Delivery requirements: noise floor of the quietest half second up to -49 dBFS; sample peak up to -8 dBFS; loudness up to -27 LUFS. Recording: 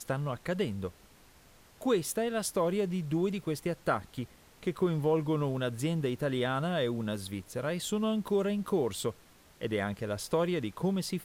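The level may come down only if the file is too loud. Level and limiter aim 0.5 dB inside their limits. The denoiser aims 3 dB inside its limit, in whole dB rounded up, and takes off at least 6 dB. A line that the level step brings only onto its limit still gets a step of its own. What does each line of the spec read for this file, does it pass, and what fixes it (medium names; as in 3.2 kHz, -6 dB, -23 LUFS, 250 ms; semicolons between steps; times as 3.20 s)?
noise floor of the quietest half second -58 dBFS: pass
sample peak -16.0 dBFS: pass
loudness -32.0 LUFS: pass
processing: none needed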